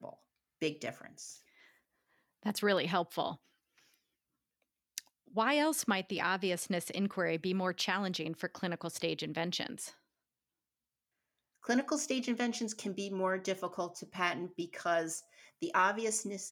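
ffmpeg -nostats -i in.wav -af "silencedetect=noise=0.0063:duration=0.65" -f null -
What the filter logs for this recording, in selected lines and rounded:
silence_start: 1.33
silence_end: 2.43 | silence_duration: 1.10
silence_start: 3.35
silence_end: 4.98 | silence_duration: 1.63
silence_start: 9.90
silence_end: 11.64 | silence_duration: 1.74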